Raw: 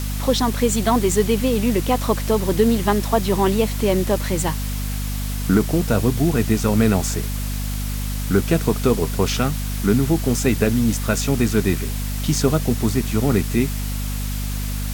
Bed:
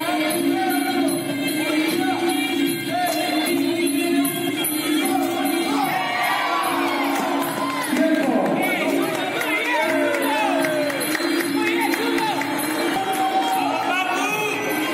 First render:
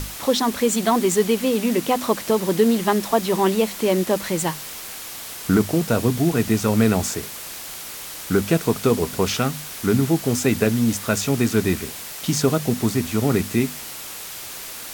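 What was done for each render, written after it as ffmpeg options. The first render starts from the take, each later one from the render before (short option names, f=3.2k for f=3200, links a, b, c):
-af "bandreject=f=50:t=h:w=6,bandreject=f=100:t=h:w=6,bandreject=f=150:t=h:w=6,bandreject=f=200:t=h:w=6,bandreject=f=250:t=h:w=6"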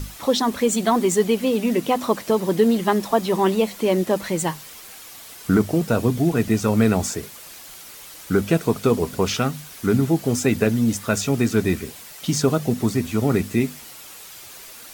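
-af "afftdn=nr=8:nf=-35"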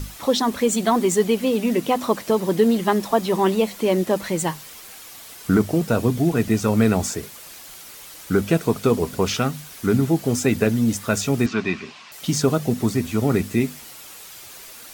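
-filter_complex "[0:a]asettb=1/sr,asplit=3[a][b][c];[a]atrim=end=11.464[d];[b]atrim=start=11.46:end=12.12,asetpts=PTS-STARTPTS,afade=t=in:d=0.004:c=qsin,afade=t=out:st=0.656:d=0.004:c=qsin,highpass=200,equalizer=f=310:t=q:w=4:g=-5,equalizer=f=490:t=q:w=4:g=-10,equalizer=f=1.1k:t=q:w=4:g=9,equalizer=f=2.6k:t=q:w=4:g=7,lowpass=f=5.4k:w=0.5412,lowpass=f=5.4k:w=1.3066[e];[c]atrim=start=12.116[f];[d][e]acrossfade=d=0.004:c1=hsin:c2=qsin[g];[g][f]acrossfade=d=0.004:c1=qsin:c2=hsin"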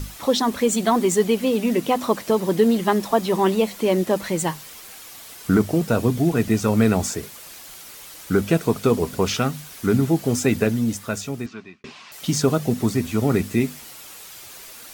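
-filter_complex "[0:a]asplit=2[a][b];[a]atrim=end=11.84,asetpts=PTS-STARTPTS,afade=t=out:st=10.52:d=1.32[c];[b]atrim=start=11.84,asetpts=PTS-STARTPTS,afade=t=in:d=0.004:c=hsin[d];[c][d]concat=n=2:v=0:a=1"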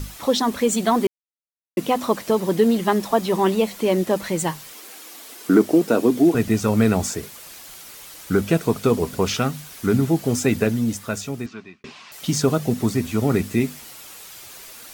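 -filter_complex "[0:a]asettb=1/sr,asplit=3[a][b][c];[a]atrim=end=4.734[d];[b]atrim=start=4.73:end=6.35,asetpts=PTS-STARTPTS,afade=t=in:d=0.004:c=qsin,afade=t=out:st=1.616:d=0.004:c=qsin,highpass=f=300:t=q:w=2.2[e];[c]atrim=start=6.346[f];[d][e]acrossfade=d=0.004:c1=hsin:c2=qsin[g];[g][f]acrossfade=d=0.004:c1=qsin:c2=hsin,asplit=3[h][i][j];[h]atrim=end=1.07,asetpts=PTS-STARTPTS,afade=t=out:st=1.066:d=0.004:c=hsin[k];[i]atrim=start=1.07:end=1.77,asetpts=PTS-STARTPTS,volume=0[l];[j]atrim=start=1.77,asetpts=PTS-STARTPTS,afade=t=in:d=0.004:c=hsin[m];[k][l][m]concat=n=3:v=0:a=1"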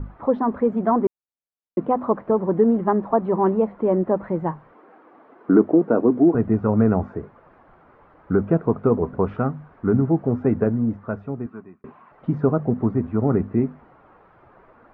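-af "lowpass=f=1.3k:w=0.5412,lowpass=f=1.3k:w=1.3066"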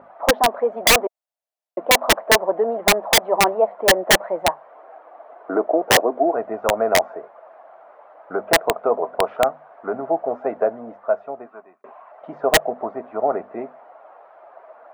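-af "highpass=f=650:t=q:w=5.6,aeval=exprs='(mod(2.24*val(0)+1,2)-1)/2.24':c=same"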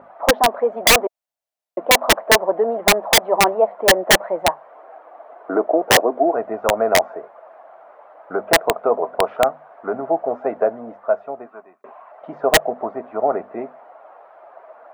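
-af "volume=1.5dB"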